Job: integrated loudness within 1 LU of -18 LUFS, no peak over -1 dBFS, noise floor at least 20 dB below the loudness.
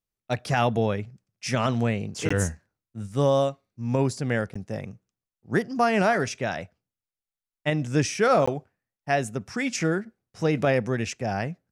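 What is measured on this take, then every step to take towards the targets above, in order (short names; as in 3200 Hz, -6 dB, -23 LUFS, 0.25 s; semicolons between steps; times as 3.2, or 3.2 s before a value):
dropouts 3; longest dropout 15 ms; loudness -26.0 LUFS; peak -10.5 dBFS; loudness target -18.0 LUFS
-> interpolate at 2.29/4.54/8.46, 15 ms; gain +8 dB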